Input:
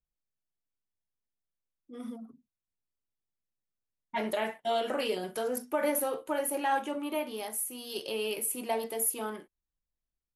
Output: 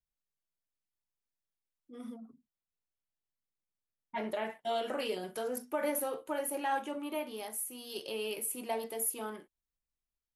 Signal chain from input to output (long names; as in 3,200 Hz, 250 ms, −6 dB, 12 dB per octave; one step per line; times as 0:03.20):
0:02.14–0:04.50: high-shelf EQ 4,100 Hz −9 dB
level −4 dB